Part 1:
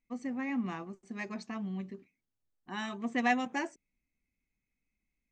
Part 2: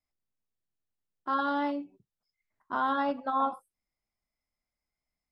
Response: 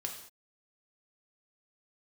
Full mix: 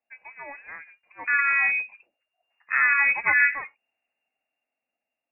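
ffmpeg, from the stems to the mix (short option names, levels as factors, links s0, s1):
-filter_complex "[0:a]highpass=f=440:w=0.5412,highpass=f=440:w=1.3066,volume=1.26[s0];[1:a]dynaudnorm=f=200:g=11:m=2.66,volume=0.944[s1];[s0][s1]amix=inputs=2:normalize=0,lowpass=f=2400:t=q:w=0.5098,lowpass=f=2400:t=q:w=0.6013,lowpass=f=2400:t=q:w=0.9,lowpass=f=2400:t=q:w=2.563,afreqshift=-2800"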